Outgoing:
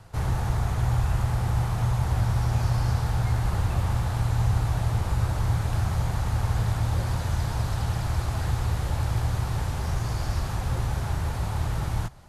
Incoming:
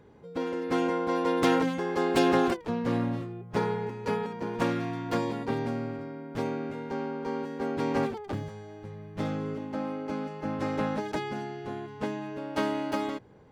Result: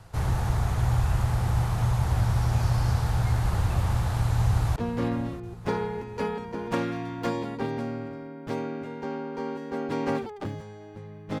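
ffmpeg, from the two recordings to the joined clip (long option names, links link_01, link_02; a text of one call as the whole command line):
ffmpeg -i cue0.wav -i cue1.wav -filter_complex "[0:a]apad=whole_dur=11.4,atrim=end=11.4,atrim=end=4.762[link_01];[1:a]atrim=start=2.638:end=9.28[link_02];[link_01][link_02]acrossfade=duration=0.004:curve1=hsin:curve2=hsin,asplit=2[link_03][link_04];[link_04]afade=type=in:start_time=4.47:duration=0.01,afade=type=out:start_time=4.76:duration=0.01,aecho=0:1:320|640|960|1280|1600|1920|2240|2560|2880|3200|3520:0.177828|0.133371|0.100028|0.0750212|0.0562659|0.0421994|0.0316496|0.0237372|0.0178029|0.0133522|0.0100141[link_05];[link_03][link_05]amix=inputs=2:normalize=0" out.wav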